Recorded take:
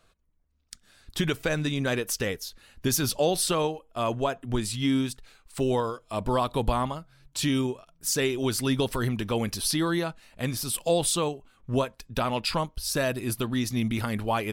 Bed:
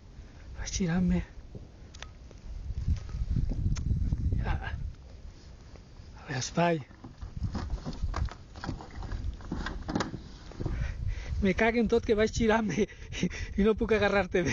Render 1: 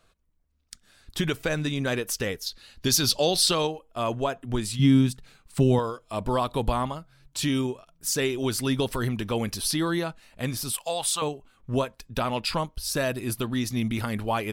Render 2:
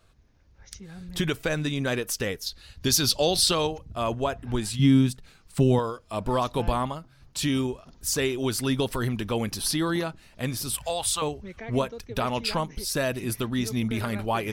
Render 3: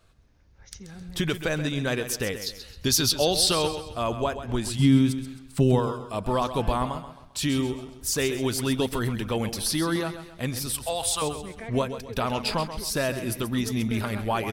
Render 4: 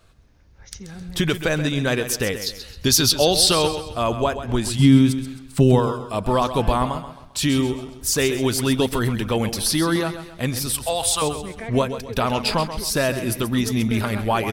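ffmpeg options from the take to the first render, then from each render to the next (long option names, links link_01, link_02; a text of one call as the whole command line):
ffmpeg -i in.wav -filter_complex "[0:a]asettb=1/sr,asplit=3[link_01][link_02][link_03];[link_01]atrim=end=2.464[link_04];[link_02]atrim=start=2.46:end=3.67,asetpts=PTS-STARTPTS,afade=type=in:duration=0.004:curve=qsin,afade=type=out:start_time=1.206:duration=0.004:curve=qsin,equalizer=frequency=4400:width_type=o:width=0.98:gain=10.5[link_05];[link_03]atrim=start=3.666[link_06];[link_04][link_05]acrossfade=duration=0.004:curve1=hsin:curve2=qsin[link_07];[link_07][link_06]acrossfade=duration=0.004:curve1=qsin:curve2=hsin,asettb=1/sr,asplit=3[link_08][link_09][link_10];[link_08]atrim=end=4.794[link_11];[link_09]atrim=start=4.79:end=5.79,asetpts=PTS-STARTPTS,afade=type=in:duration=0.004:curve=qsin,afade=type=out:start_time=0.996:duration=0.004:curve=qsin,equalizer=frequency=160:width_type=o:width=1.2:gain=13.5[link_12];[link_10]atrim=start=5.786[link_13];[link_11][link_12]acrossfade=duration=0.004:curve1=hsin:curve2=qsin[link_14];[link_14][link_13]acrossfade=duration=0.004:curve1=qsin:curve2=hsin,asettb=1/sr,asplit=3[link_15][link_16][link_17];[link_15]atrim=end=10.734[link_18];[link_16]atrim=start=10.73:end=11.22,asetpts=PTS-STARTPTS,afade=type=in:duration=0.004:curve=qsin,afade=type=out:start_time=0.486:duration=0.004:curve=qsin,lowshelf=frequency=550:width_type=q:width=1.5:gain=-13.5[link_19];[link_17]atrim=start=11.216[link_20];[link_18][link_19]acrossfade=duration=0.004:curve1=hsin:curve2=qsin[link_21];[link_21][link_20]acrossfade=duration=0.004:curve1=qsin:curve2=hsin" out.wav
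ffmpeg -i in.wav -i bed.wav -filter_complex "[1:a]volume=-14.5dB[link_01];[0:a][link_01]amix=inputs=2:normalize=0" out.wav
ffmpeg -i in.wav -af "aecho=1:1:132|264|396|528:0.282|0.11|0.0429|0.0167" out.wav
ffmpeg -i in.wav -af "volume=5.5dB" out.wav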